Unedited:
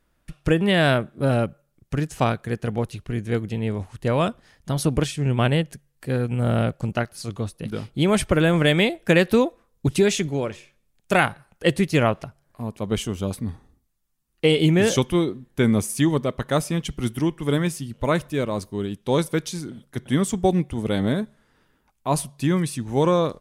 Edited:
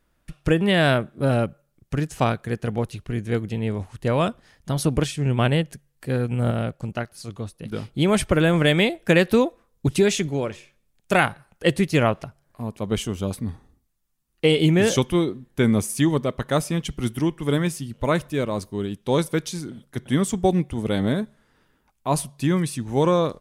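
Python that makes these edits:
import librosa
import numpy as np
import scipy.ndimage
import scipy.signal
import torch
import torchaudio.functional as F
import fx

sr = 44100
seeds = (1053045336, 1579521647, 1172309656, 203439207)

y = fx.edit(x, sr, fx.clip_gain(start_s=6.51, length_s=1.2, db=-4.0), tone=tone)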